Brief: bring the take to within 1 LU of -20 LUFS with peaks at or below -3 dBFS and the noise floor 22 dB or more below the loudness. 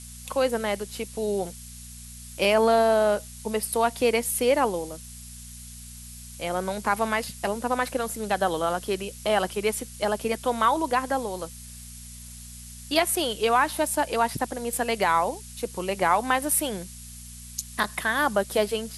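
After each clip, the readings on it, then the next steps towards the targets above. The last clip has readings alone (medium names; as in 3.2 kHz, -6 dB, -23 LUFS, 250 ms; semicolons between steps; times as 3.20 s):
hum 60 Hz; highest harmonic 240 Hz; hum level -42 dBFS; noise floor -42 dBFS; noise floor target -48 dBFS; loudness -25.5 LUFS; peak level -5.5 dBFS; loudness target -20.0 LUFS
-> de-hum 60 Hz, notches 4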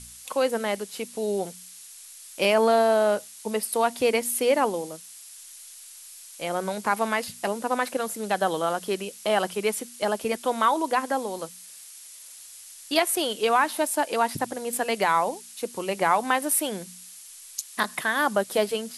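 hum not found; noise floor -46 dBFS; noise floor target -48 dBFS
-> noise reduction 6 dB, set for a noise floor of -46 dBFS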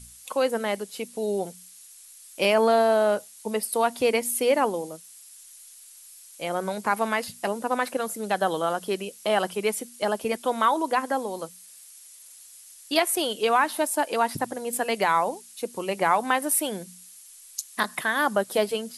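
noise floor -49 dBFS; loudness -25.5 LUFS; peak level -5.5 dBFS; loudness target -20.0 LUFS
-> trim +5.5 dB; peak limiter -3 dBFS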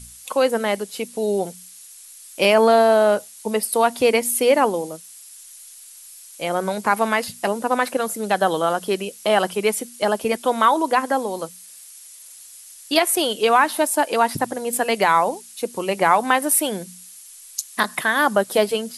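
loudness -20.0 LUFS; peak level -3.0 dBFS; noise floor -43 dBFS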